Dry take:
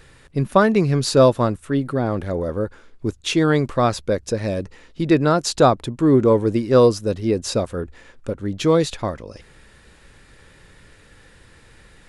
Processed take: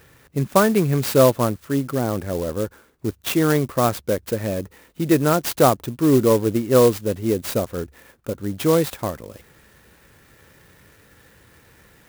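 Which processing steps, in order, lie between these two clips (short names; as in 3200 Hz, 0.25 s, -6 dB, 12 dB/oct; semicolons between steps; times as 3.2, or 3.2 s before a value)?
HPF 70 Hz; clock jitter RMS 0.051 ms; gain -1 dB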